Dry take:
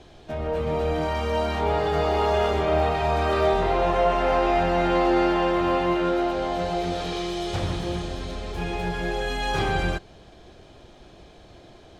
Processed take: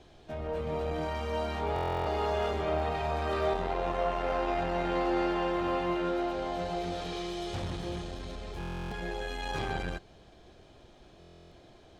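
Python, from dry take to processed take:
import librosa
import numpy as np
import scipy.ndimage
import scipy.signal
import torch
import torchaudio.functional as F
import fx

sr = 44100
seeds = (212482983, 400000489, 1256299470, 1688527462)

y = fx.buffer_glitch(x, sr, at_s=(1.74, 8.59, 11.19), block=1024, repeats=13)
y = fx.transformer_sat(y, sr, knee_hz=300.0)
y = F.gain(torch.from_numpy(y), -7.0).numpy()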